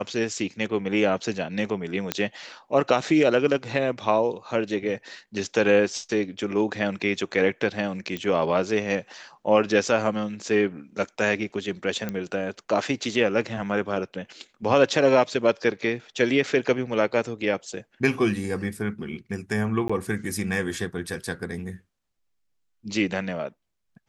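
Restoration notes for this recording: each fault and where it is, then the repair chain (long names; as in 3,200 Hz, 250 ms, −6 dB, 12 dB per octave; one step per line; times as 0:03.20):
0:02.12: click −7 dBFS
0:08.17: click −17 dBFS
0:12.09: click −16 dBFS
0:19.88–0:19.89: drop-out 15 ms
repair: click removal
repair the gap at 0:19.88, 15 ms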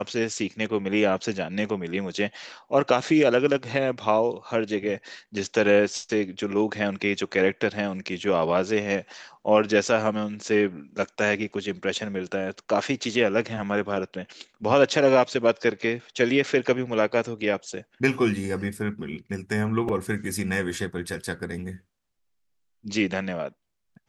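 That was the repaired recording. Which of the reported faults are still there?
none of them is left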